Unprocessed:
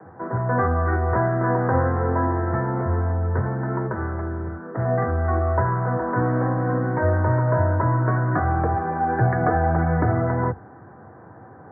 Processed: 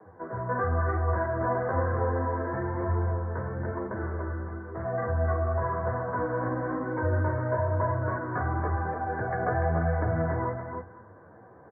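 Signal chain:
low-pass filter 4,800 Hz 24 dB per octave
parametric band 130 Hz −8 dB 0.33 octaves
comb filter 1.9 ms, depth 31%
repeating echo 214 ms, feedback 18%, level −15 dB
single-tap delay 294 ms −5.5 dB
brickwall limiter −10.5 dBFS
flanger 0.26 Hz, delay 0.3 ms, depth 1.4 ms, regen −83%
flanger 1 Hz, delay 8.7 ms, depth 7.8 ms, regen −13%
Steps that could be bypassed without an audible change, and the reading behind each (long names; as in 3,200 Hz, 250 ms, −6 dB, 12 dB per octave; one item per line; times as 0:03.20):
low-pass filter 4,800 Hz: nothing at its input above 1,600 Hz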